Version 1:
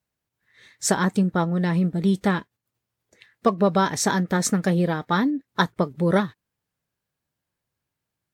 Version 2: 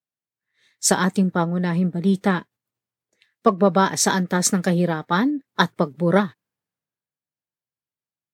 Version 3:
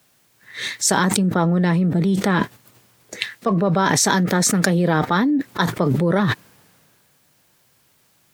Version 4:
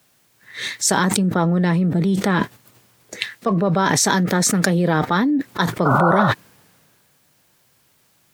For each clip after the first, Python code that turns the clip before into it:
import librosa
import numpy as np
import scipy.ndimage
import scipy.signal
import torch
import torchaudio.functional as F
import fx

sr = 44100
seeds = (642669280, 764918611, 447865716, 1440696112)

y1 = scipy.signal.sosfilt(scipy.signal.butter(2, 120.0, 'highpass', fs=sr, output='sos'), x)
y1 = fx.band_widen(y1, sr, depth_pct=40)
y1 = F.gain(torch.from_numpy(y1), 2.0).numpy()
y2 = fx.env_flatten(y1, sr, amount_pct=100)
y2 = F.gain(torch.from_numpy(y2), -6.0).numpy()
y3 = fx.spec_paint(y2, sr, seeds[0], shape='noise', start_s=5.85, length_s=0.47, low_hz=520.0, high_hz=1500.0, level_db=-18.0)